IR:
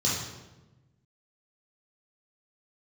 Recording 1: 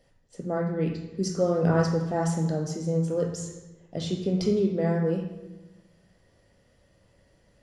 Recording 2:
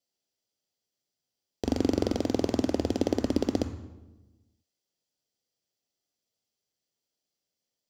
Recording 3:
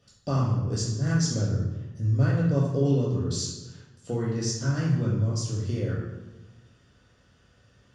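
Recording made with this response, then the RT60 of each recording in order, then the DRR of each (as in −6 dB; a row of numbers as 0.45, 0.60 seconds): 3; 1.1, 1.1, 1.1 seconds; 0.5, 8.0, −6.5 decibels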